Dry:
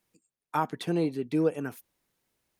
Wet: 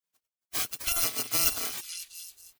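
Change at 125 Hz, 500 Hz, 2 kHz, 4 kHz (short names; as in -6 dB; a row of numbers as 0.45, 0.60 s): -13.5, -14.5, +5.0, +14.0 dB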